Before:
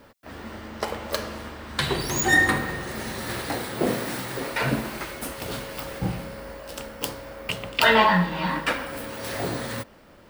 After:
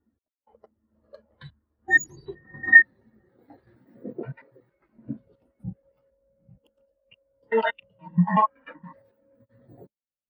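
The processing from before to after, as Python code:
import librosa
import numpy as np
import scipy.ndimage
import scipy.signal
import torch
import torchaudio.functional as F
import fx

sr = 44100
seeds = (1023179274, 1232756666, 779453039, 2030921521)

y = fx.block_reorder(x, sr, ms=94.0, group=5)
y = fx.spectral_expand(y, sr, expansion=2.5)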